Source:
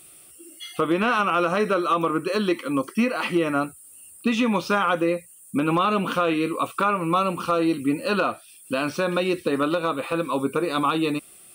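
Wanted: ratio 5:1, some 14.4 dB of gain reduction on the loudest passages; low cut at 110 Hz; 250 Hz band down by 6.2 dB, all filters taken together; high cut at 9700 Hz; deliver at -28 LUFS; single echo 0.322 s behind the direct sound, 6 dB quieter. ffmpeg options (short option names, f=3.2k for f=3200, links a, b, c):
-af "highpass=110,lowpass=9.7k,equalizer=f=250:t=o:g=-8.5,acompressor=threshold=-35dB:ratio=5,aecho=1:1:322:0.501,volume=8.5dB"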